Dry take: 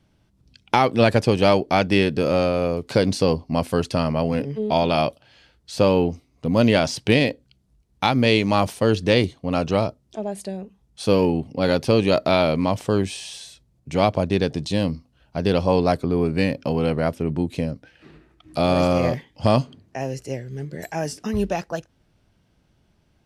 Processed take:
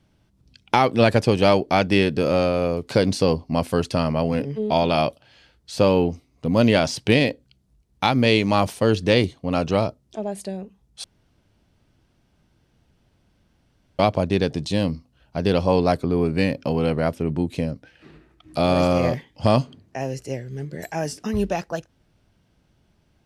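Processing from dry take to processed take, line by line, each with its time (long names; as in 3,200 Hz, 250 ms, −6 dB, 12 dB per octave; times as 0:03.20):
0:11.04–0:13.99: fill with room tone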